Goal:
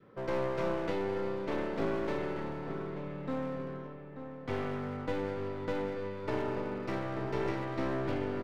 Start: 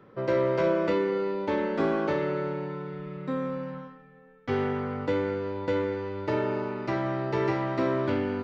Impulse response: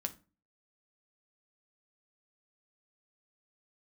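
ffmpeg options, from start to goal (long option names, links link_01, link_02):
-filter_complex "[0:a]adynamicequalizer=threshold=0.0126:dfrequency=900:dqfactor=1.3:tfrequency=900:tqfactor=1.3:attack=5:release=100:ratio=0.375:range=2:mode=cutabove:tftype=bell,aeval=exprs='clip(val(0),-1,0.0211)':channel_layout=same,asplit=2[link_01][link_02];[link_02]adelay=886,lowpass=frequency=2200:poles=1,volume=-9dB,asplit=2[link_03][link_04];[link_04]adelay=886,lowpass=frequency=2200:poles=1,volume=0.49,asplit=2[link_05][link_06];[link_06]adelay=886,lowpass=frequency=2200:poles=1,volume=0.49,asplit=2[link_07][link_08];[link_08]adelay=886,lowpass=frequency=2200:poles=1,volume=0.49,asplit=2[link_09][link_10];[link_10]adelay=886,lowpass=frequency=2200:poles=1,volume=0.49,asplit=2[link_11][link_12];[link_12]adelay=886,lowpass=frequency=2200:poles=1,volume=0.49[link_13];[link_01][link_03][link_05][link_07][link_09][link_11][link_13]amix=inputs=7:normalize=0,volume=-4.5dB"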